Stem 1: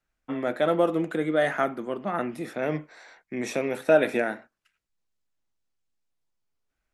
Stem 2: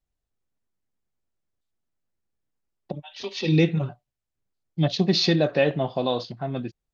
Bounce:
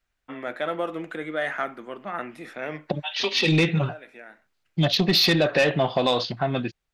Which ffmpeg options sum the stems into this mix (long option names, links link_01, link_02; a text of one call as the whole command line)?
ffmpeg -i stem1.wav -i stem2.wav -filter_complex "[0:a]volume=-8.5dB[link_01];[1:a]dynaudnorm=framelen=280:gausssize=5:maxgain=5dB,volume=1dB,asplit=2[link_02][link_03];[link_03]apad=whole_len=305836[link_04];[link_01][link_04]sidechaincompress=threshold=-32dB:ratio=8:attack=6.6:release=1010[link_05];[link_05][link_02]amix=inputs=2:normalize=0,equalizer=frequency=2100:width_type=o:width=2.8:gain=10,asoftclip=type=tanh:threshold=-7.5dB,acompressor=threshold=-21dB:ratio=2" out.wav